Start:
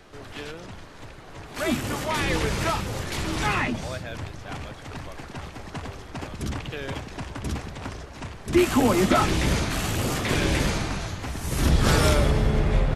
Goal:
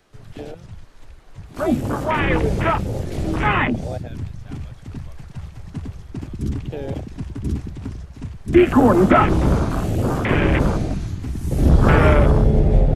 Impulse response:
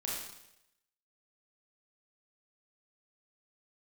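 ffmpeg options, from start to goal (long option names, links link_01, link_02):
-filter_complex "[0:a]afwtdn=0.0447,acrossover=split=3000[link_01][link_02];[link_02]acompressor=threshold=-50dB:ratio=4:attack=1:release=60[link_03];[link_01][link_03]amix=inputs=2:normalize=0,highshelf=frequency=6300:gain=6.5,volume=7dB"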